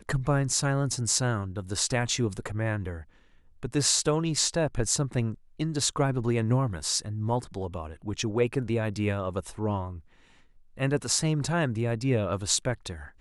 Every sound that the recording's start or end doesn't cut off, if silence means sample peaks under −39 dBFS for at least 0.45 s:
0:03.63–0:09.99

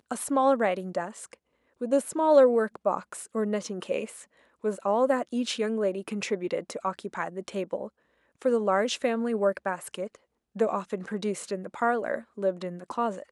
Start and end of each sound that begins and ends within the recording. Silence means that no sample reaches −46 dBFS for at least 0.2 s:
0:01.81–0:04.24
0:04.64–0:07.88
0:08.42–0:10.15

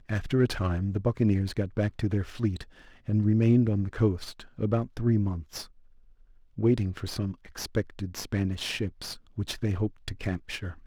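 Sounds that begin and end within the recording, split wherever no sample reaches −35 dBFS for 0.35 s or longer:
0:03.08–0:05.63

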